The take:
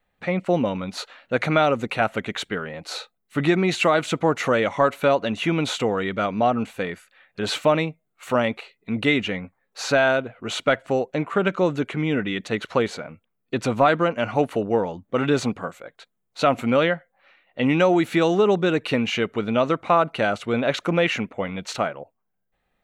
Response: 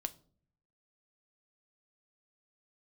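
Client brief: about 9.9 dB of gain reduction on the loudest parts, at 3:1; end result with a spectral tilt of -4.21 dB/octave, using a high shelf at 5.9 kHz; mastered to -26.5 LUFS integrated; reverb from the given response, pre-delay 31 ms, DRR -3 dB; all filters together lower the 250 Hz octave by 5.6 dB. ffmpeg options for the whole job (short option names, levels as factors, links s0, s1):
-filter_complex "[0:a]equalizer=f=250:t=o:g=-8,highshelf=f=5900:g=3,acompressor=threshold=0.0398:ratio=3,asplit=2[s0][s1];[1:a]atrim=start_sample=2205,adelay=31[s2];[s1][s2]afir=irnorm=-1:irlink=0,volume=1.58[s3];[s0][s3]amix=inputs=2:normalize=0"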